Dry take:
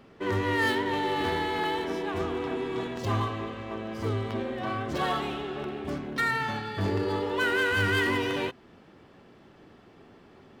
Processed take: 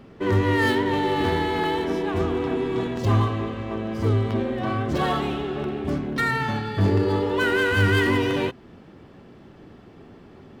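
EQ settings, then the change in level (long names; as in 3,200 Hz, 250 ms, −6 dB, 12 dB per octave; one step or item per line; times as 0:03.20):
low-shelf EQ 380 Hz +8 dB
+2.5 dB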